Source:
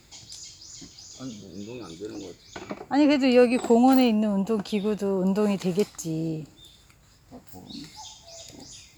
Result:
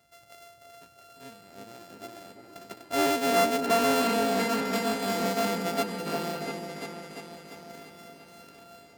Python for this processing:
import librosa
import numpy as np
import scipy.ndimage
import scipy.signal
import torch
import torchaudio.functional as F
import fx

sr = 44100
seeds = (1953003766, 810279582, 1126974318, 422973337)

y = np.r_[np.sort(x[:len(x) // 64 * 64].reshape(-1, 64), axis=1).ravel(), x[len(x) // 64 * 64:]]
y = fx.notch(y, sr, hz=1100.0, q=9.5)
y = fx.echo_opening(y, sr, ms=345, hz=750, octaves=2, feedback_pct=70, wet_db=-3)
y = 10.0 ** (-18.0 / 20.0) * np.tanh(y / 10.0 ** (-18.0 / 20.0))
y = scipy.signal.sosfilt(scipy.signal.butter(2, 72.0, 'highpass', fs=sr, output='sos'), y)
y = fx.low_shelf(y, sr, hz=200.0, db=-7.5)
y = fx.upward_expand(y, sr, threshold_db=-37.0, expansion=1.5)